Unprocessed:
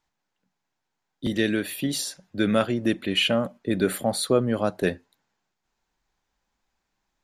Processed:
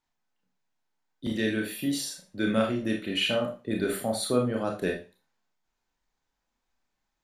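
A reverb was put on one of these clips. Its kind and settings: Schroeder reverb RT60 0.32 s, combs from 25 ms, DRR 1 dB; gain -6.5 dB

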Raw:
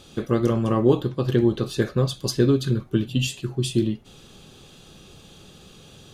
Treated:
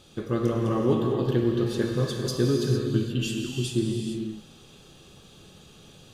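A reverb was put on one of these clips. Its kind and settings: non-linear reverb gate 0.48 s flat, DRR 0 dB; gain -6 dB

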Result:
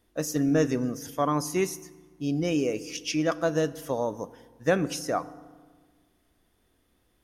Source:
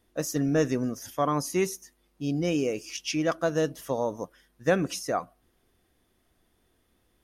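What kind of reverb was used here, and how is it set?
FDN reverb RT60 1.5 s, low-frequency decay 1.25×, high-frequency decay 0.6×, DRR 15.5 dB

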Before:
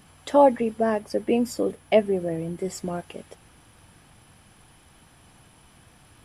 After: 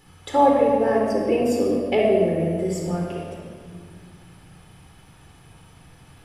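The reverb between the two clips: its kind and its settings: shoebox room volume 3100 m³, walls mixed, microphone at 4.1 m; gain -3 dB

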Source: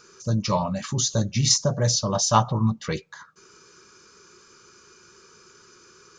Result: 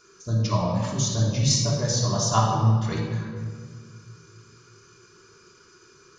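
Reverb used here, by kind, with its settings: shoebox room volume 2500 m³, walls mixed, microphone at 3.2 m; gain -6.5 dB

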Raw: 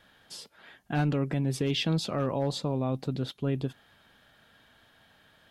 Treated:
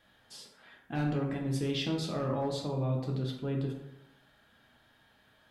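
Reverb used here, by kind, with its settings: plate-style reverb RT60 0.89 s, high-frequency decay 0.5×, DRR -0.5 dB; gain -7 dB

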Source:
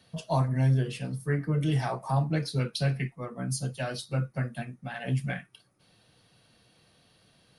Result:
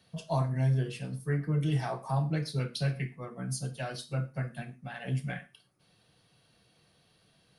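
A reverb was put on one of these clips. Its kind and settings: non-linear reverb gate 0.15 s falling, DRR 10 dB; gain -4 dB

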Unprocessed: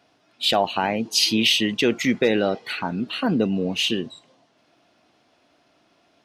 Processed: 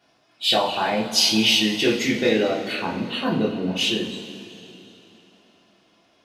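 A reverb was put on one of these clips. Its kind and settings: two-slope reverb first 0.29 s, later 3.2 s, from -18 dB, DRR -5.5 dB; gain -5.5 dB

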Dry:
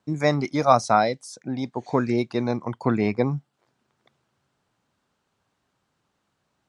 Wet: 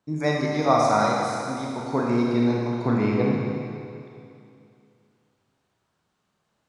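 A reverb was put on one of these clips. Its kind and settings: Schroeder reverb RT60 2.5 s, combs from 26 ms, DRR -3 dB; gain -4.5 dB

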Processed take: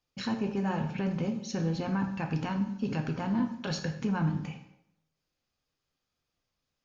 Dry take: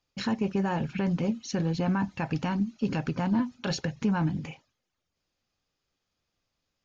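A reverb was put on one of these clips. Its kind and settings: plate-style reverb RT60 0.78 s, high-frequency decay 0.75×, DRR 4.5 dB; gain -4 dB

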